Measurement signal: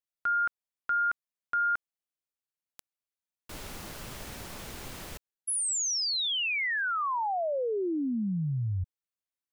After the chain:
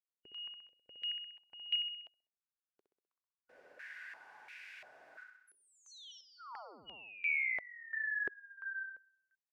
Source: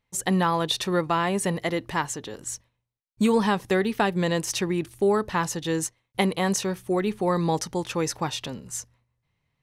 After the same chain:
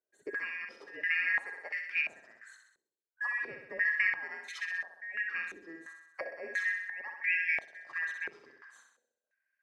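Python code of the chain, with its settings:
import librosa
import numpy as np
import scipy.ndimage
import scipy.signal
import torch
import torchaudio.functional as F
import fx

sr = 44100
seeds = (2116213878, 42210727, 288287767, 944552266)

y = fx.band_shuffle(x, sr, order='2143')
y = fx.cheby_harmonics(y, sr, harmonics=(2,), levels_db=(-33,), full_scale_db=-6.5)
y = fx.echo_feedback(y, sr, ms=64, feedback_pct=59, wet_db=-5.5)
y = fx.filter_held_bandpass(y, sr, hz=2.9, low_hz=400.0, high_hz=2400.0)
y = y * librosa.db_to_amplitude(-3.5)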